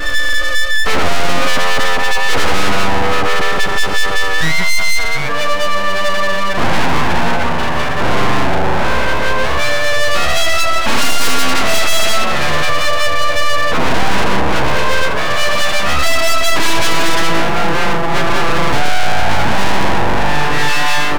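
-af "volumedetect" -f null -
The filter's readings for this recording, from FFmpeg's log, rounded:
mean_volume: -8.6 dB
max_volume: -5.1 dB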